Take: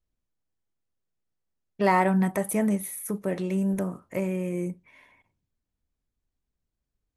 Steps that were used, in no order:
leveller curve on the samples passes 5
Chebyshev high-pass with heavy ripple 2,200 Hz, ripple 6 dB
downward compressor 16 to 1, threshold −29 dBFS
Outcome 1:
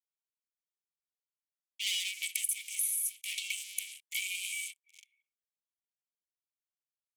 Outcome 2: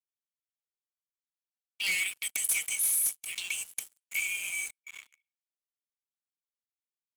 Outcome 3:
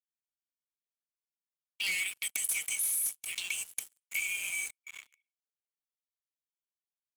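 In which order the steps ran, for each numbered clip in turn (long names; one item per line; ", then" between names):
leveller curve on the samples, then Chebyshev high-pass with heavy ripple, then downward compressor
Chebyshev high-pass with heavy ripple, then downward compressor, then leveller curve on the samples
Chebyshev high-pass with heavy ripple, then leveller curve on the samples, then downward compressor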